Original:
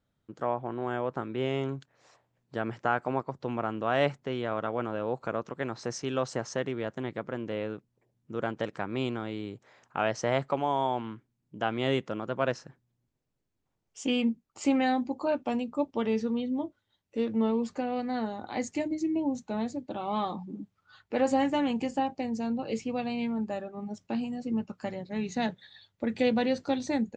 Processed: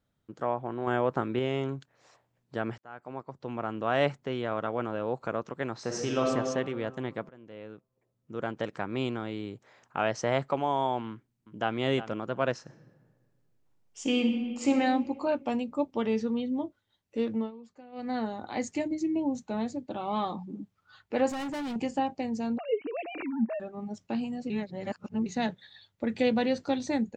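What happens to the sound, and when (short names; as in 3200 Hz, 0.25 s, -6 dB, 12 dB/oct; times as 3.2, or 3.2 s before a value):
0.87–1.39 gain +4.5 dB
2.78–3.88 fade in
5.8–6.26 reverb throw, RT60 2 s, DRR -0.5 dB
7.29–8.74 fade in, from -21 dB
11.1–11.77 echo throw 0.36 s, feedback 10%, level -12.5 dB
12.61–14.72 reverb throw, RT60 1.7 s, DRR 3.5 dB
17.33–18.1 dip -18.5 dB, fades 0.18 s
21.29–21.76 hard clip -32.5 dBFS
22.58–23.6 sine-wave speech
24.5–25.26 reverse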